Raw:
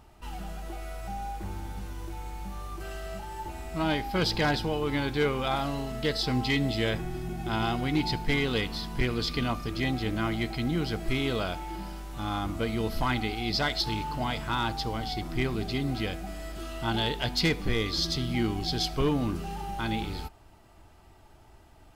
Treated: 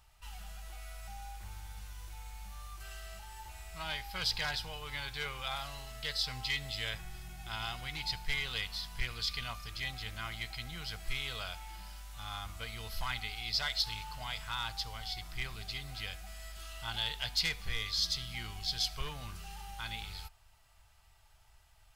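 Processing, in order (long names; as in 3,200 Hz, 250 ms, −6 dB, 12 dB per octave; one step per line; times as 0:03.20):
guitar amp tone stack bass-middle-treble 10-0-10
level −1 dB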